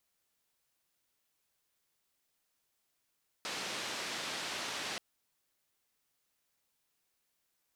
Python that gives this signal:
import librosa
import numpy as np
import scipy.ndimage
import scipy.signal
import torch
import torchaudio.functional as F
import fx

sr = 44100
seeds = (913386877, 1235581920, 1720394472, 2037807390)

y = fx.band_noise(sr, seeds[0], length_s=1.53, low_hz=180.0, high_hz=4700.0, level_db=-39.5)